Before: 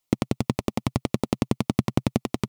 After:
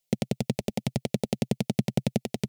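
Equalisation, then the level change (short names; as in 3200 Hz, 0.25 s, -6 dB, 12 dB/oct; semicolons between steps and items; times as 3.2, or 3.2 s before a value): fixed phaser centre 300 Hz, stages 6; 0.0 dB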